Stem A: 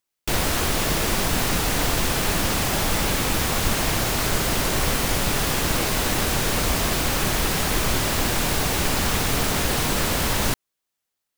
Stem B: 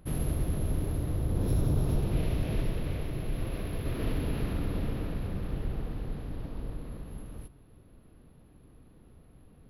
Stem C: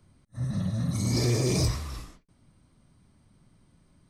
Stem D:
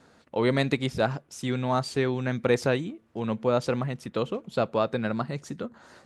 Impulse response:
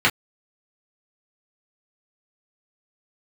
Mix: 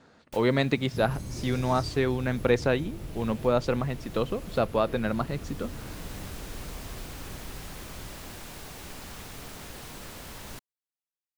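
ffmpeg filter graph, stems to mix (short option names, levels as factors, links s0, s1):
-filter_complex "[0:a]adelay=50,volume=0.1[s0];[1:a]acompressor=threshold=0.0355:ratio=6,adelay=900,volume=0.501[s1];[2:a]adelay=200,volume=0.178[s2];[3:a]lowpass=6300,volume=1,asplit=2[s3][s4];[s4]apad=whole_len=503830[s5];[s0][s5]sidechaincompress=threshold=0.0282:ratio=8:attack=23:release=1140[s6];[s6][s1][s2][s3]amix=inputs=4:normalize=0"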